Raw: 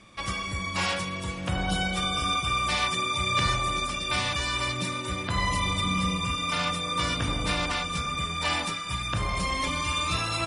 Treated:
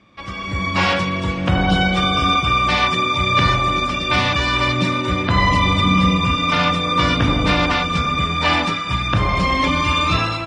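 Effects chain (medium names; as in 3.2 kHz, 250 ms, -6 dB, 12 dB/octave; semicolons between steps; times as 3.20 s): high-pass 48 Hz; peaking EQ 270 Hz +3.5 dB 0.57 oct; level rider gain up to 13.5 dB; distance through air 160 m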